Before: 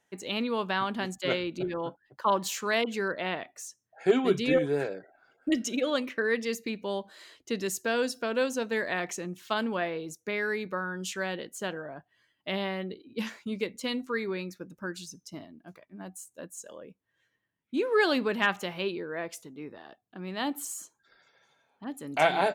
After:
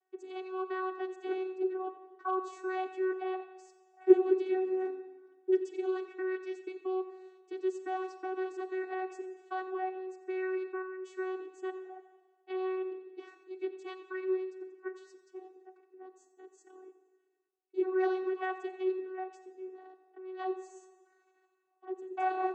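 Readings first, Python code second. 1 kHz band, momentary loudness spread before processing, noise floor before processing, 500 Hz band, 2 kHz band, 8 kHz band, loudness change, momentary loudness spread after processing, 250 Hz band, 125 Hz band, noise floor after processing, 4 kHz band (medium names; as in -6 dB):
-4.5 dB, 18 LU, -78 dBFS, -2.5 dB, -13.0 dB, under -20 dB, -4.5 dB, 19 LU, -4.0 dB, under -40 dB, -73 dBFS, under -20 dB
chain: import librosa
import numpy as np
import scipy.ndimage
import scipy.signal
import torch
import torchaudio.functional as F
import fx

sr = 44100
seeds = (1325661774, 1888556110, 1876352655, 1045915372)

p1 = fx.peak_eq(x, sr, hz=4200.0, db=-10.5, octaves=1.9)
p2 = p1 + 0.55 * np.pad(p1, (int(7.3 * sr / 1000.0), 0))[:len(p1)]
p3 = fx.level_steps(p2, sr, step_db=17)
p4 = p2 + (p3 * 10.0 ** (1.5 / 20.0))
p5 = fx.vocoder(p4, sr, bands=16, carrier='saw', carrier_hz=374.0)
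p6 = p5 + fx.echo_feedback(p5, sr, ms=89, feedback_pct=47, wet_db=-16, dry=0)
p7 = fx.rev_schroeder(p6, sr, rt60_s=1.5, comb_ms=32, drr_db=11.5)
y = p7 * 10.0 ** (-8.0 / 20.0)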